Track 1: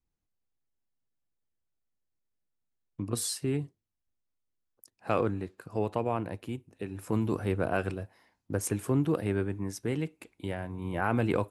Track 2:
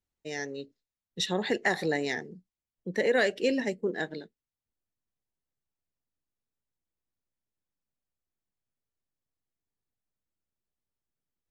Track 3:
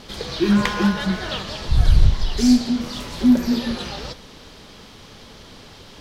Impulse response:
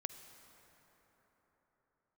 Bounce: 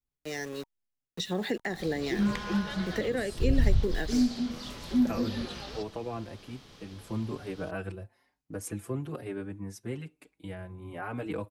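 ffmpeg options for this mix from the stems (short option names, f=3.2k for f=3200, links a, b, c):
-filter_complex "[0:a]asplit=2[a][b];[b]adelay=5.2,afreqshift=1.1[c];[a][c]amix=inputs=2:normalize=1,volume=-3dB[d];[1:a]aeval=exprs='val(0)*gte(abs(val(0)),0.00841)':c=same,volume=1dB[e];[2:a]adelay=1700,volume=-10dB[f];[d][e][f]amix=inputs=3:normalize=0,acrossover=split=340[g][h];[h]acompressor=threshold=-32dB:ratio=10[i];[g][i]amix=inputs=2:normalize=0,bandreject=f=930:w=21"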